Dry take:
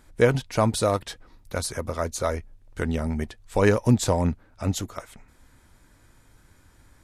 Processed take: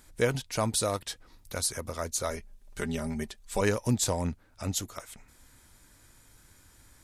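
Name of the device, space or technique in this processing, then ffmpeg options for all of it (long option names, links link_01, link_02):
parallel compression: -filter_complex "[0:a]asettb=1/sr,asplit=3[link_01][link_02][link_03];[link_01]atrim=end=2.304[link_04];[link_02]atrim=start=2.3:end=3.61,asetpts=PTS-STARTPTS,afade=type=in:duration=0.004:curve=qsin,afade=type=out:start_time=1.306:duration=0.004:curve=qsin,aecho=1:1:5:0.66,atrim=end_sample=57771[link_05];[link_03]atrim=start=3.606[link_06];[link_04][link_05]acrossfade=duration=0.004:curve1=hsin:curve2=qsin[link_07];[link_07][link_06]acrossfade=duration=0.004:curve1=qsin:curve2=hsin,asplit=2[link_08][link_09];[link_09]acompressor=threshold=-40dB:ratio=6,volume=-3dB[link_10];[link_08][link_10]amix=inputs=2:normalize=0,highshelf=frequency=3200:gain=11,volume=-8.5dB"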